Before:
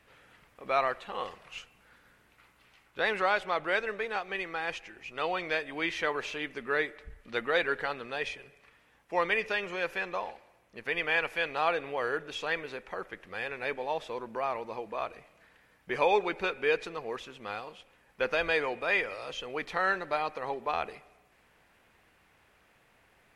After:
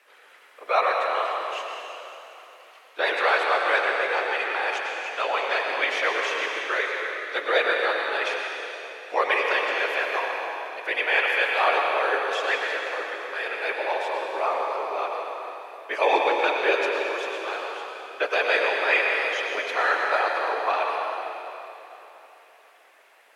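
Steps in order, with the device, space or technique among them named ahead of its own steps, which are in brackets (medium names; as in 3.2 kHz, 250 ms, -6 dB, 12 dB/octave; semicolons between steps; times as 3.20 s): whispering ghost (whisper effect; high-pass 440 Hz 24 dB/octave; reverberation RT60 3.3 s, pre-delay 92 ms, DRR 0 dB); 6.67–7.36 s: bass shelf 340 Hz -10.5 dB; trim +5.5 dB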